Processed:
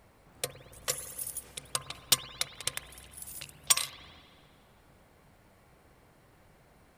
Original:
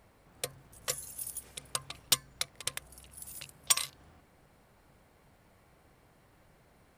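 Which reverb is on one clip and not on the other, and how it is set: spring tank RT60 1.9 s, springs 55 ms, chirp 75 ms, DRR 11 dB; trim +2 dB

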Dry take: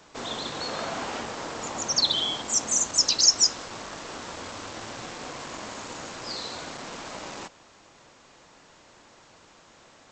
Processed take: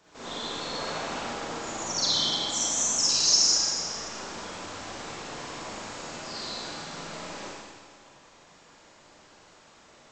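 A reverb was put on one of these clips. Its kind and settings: Schroeder reverb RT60 1.7 s, DRR -8.5 dB; trim -9.5 dB

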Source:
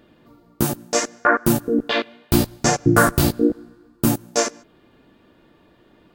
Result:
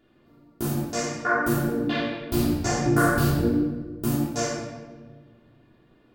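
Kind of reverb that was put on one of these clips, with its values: simulated room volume 1100 m³, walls mixed, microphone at 3.2 m; trim -13 dB

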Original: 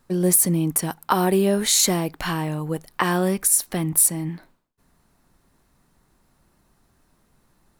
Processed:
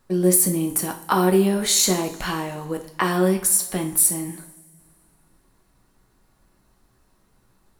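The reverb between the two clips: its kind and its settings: two-slope reverb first 0.41 s, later 2.1 s, from -20 dB, DRR 3 dB; trim -1.5 dB

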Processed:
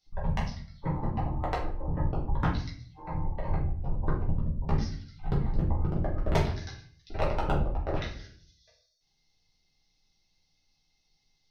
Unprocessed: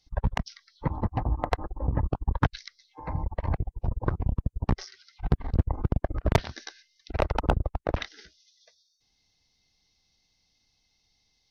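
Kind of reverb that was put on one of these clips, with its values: simulated room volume 58 m³, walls mixed, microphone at 1.2 m; trim -9 dB

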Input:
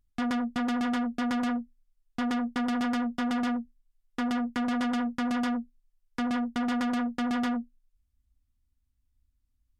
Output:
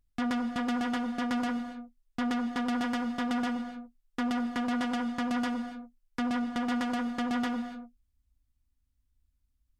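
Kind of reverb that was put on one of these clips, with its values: gated-style reverb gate 310 ms flat, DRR 9 dB; trim -1 dB

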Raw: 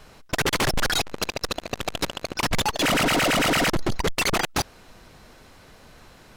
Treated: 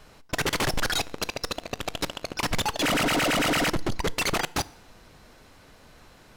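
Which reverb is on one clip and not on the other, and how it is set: FDN reverb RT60 0.7 s, low-frequency decay 1×, high-frequency decay 0.9×, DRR 18 dB; trim -3 dB

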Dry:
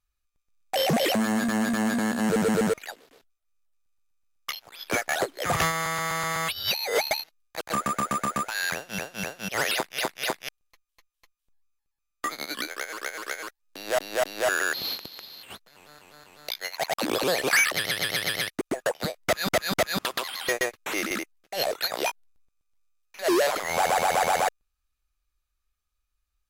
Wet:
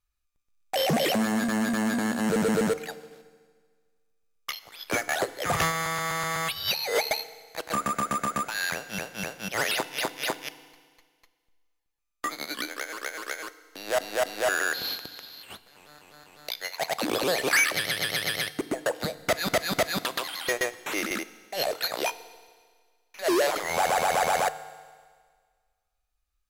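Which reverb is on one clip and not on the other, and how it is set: FDN reverb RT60 1.7 s, low-frequency decay 0.95×, high-frequency decay 1×, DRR 14 dB; trim -1 dB

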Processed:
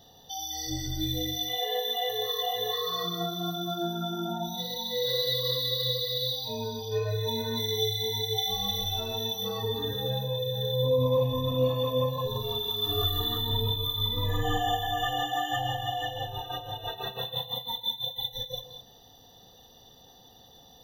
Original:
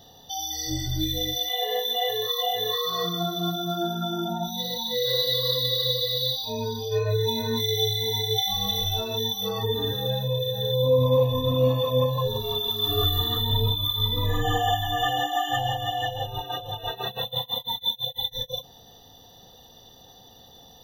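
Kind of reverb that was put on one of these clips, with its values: gated-style reverb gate 230 ms rising, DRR 8.5 dB; trim -4.5 dB

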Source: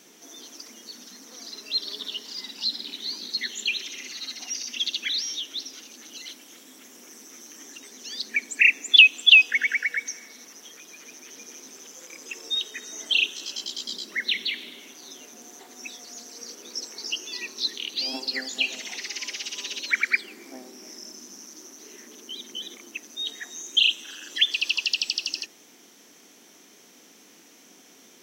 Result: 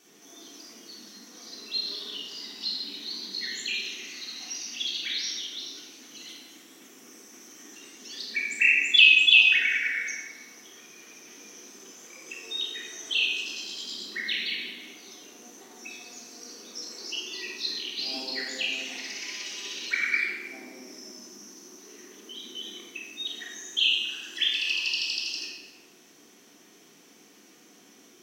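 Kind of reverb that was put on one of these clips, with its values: simulated room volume 1100 m³, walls mixed, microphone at 3.5 m; trim -9 dB

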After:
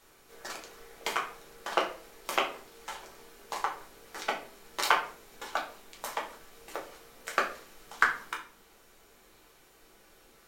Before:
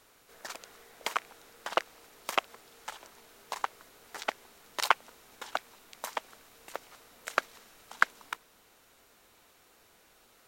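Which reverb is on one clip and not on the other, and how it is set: simulated room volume 34 m³, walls mixed, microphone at 0.74 m; trim -2 dB

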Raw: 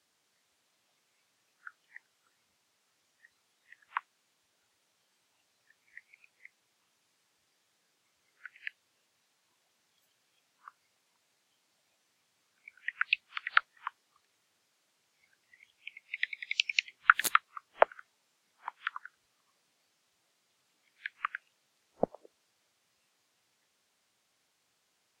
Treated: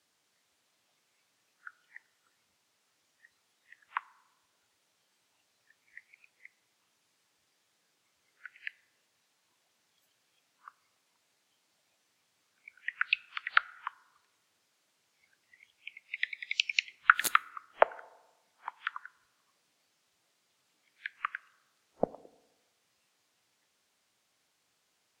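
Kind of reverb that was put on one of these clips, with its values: FDN reverb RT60 1.1 s, low-frequency decay 0.95×, high-frequency decay 0.45×, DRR 20 dB

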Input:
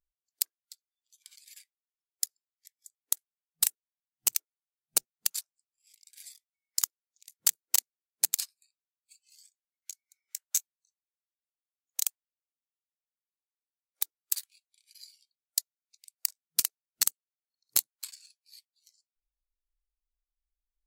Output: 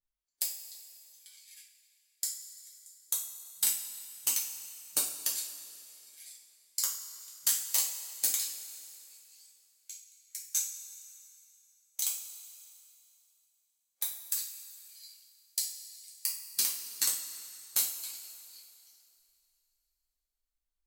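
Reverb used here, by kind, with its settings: two-slope reverb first 0.4 s, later 2.7 s, from -15 dB, DRR -5.5 dB; trim -7 dB

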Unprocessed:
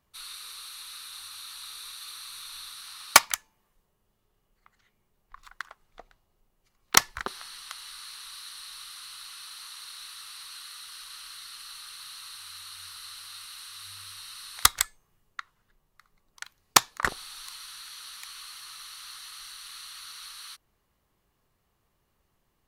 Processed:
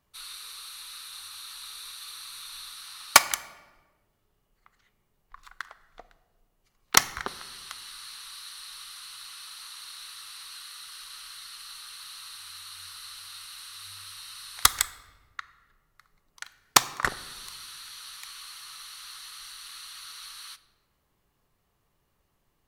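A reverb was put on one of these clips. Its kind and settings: simulated room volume 880 m³, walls mixed, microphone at 0.32 m

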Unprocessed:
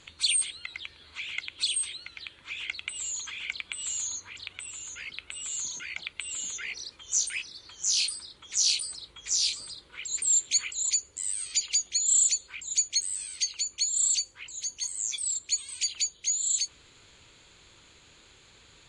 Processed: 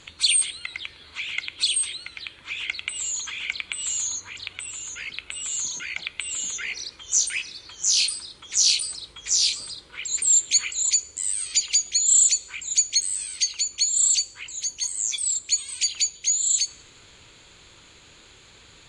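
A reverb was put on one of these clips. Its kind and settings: plate-style reverb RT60 1.4 s, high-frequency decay 0.55×, DRR 17 dB; trim +5.5 dB

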